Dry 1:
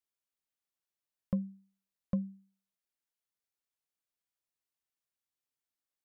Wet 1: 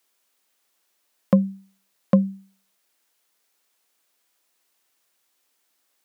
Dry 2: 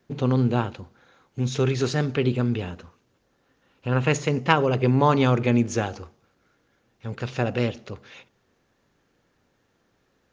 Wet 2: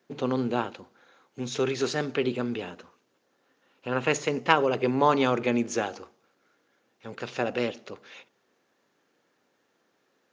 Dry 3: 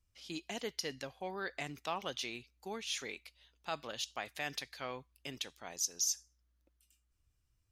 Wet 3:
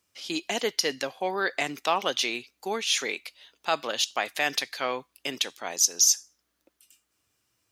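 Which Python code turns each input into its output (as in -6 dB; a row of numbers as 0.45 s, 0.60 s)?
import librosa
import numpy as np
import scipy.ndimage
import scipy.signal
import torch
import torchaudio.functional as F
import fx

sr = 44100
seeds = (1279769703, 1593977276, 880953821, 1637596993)

y = scipy.signal.sosfilt(scipy.signal.butter(2, 270.0, 'highpass', fs=sr, output='sos'), x)
y = y * 10.0 ** (-30 / 20.0) / np.sqrt(np.mean(np.square(y)))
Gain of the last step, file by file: +21.5 dB, -1.0 dB, +13.5 dB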